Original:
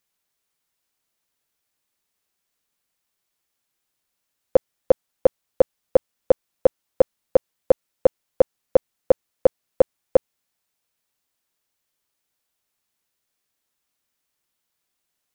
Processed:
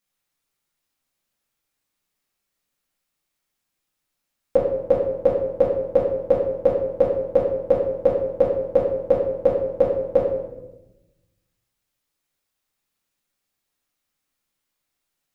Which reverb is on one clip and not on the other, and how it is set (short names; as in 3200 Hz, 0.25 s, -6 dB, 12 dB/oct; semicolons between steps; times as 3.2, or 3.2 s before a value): shoebox room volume 390 m³, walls mixed, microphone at 2.2 m; gain -6 dB